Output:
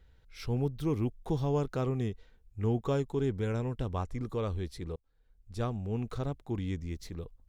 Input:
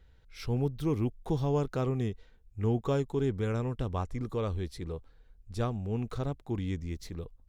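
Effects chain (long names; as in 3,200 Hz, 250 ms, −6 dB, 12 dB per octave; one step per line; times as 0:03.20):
0:03.32–0:03.85: notch filter 1,200 Hz, Q 8.8
0:04.96–0:05.70: fade in
level −1 dB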